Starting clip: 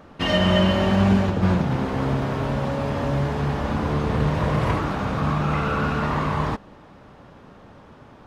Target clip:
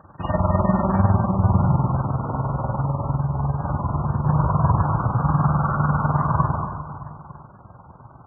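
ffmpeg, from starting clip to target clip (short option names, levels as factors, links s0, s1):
-filter_complex "[0:a]tremolo=f=20:d=0.824,acrusher=bits=4:mode=log:mix=0:aa=0.000001,equalizer=f=125:t=o:w=1:g=8,equalizer=f=250:t=o:w=1:g=-8,equalizer=f=500:t=o:w=1:g=-6,equalizer=f=1000:t=o:w=1:g=8,equalizer=f=2000:t=o:w=1:g=-10,equalizer=f=4000:t=o:w=1:g=-11,acrossover=split=3400[s0][s1];[s1]acompressor=threshold=0.00178:ratio=4:attack=1:release=60[s2];[s0][s2]amix=inputs=2:normalize=0,equalizer=f=3900:w=1.9:g=-13,bandreject=f=440:w=12,aecho=1:1:100|230|399|618.7|904.3:0.631|0.398|0.251|0.158|0.1,asettb=1/sr,asplit=3[s3][s4][s5];[s3]atrim=end=1.994[s6];[s4]atrim=start=1.99:end=4.27,asetpts=PTS-STARTPTS,afade=t=in:d=0.004:c=qsin,afade=t=out:st=2.276:d=0.004:c=qsin,acompressor=threshold=0.0891:ratio=12[s7];[s5]atrim=start=4.266[s8];[s6][s7]acrossfade=d=0.004:c1=hsin:c2=qsin[s9];[s9][s8]acrossfade=d=0.004:c1=qsin:c2=hsin,highpass=f=41:w=0.5412,highpass=f=41:w=1.3066,volume=1.41" -ar 12000 -c:a libmp3lame -b:a 8k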